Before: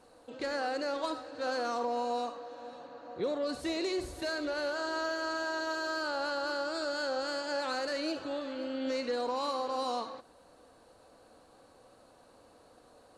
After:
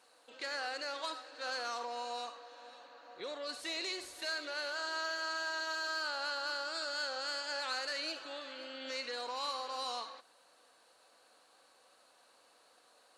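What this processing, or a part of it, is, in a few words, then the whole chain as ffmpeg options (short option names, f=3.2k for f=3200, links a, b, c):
filter by subtraction: -filter_complex "[0:a]asplit=2[a][b];[b]lowpass=2.5k,volume=-1[c];[a][c]amix=inputs=2:normalize=0"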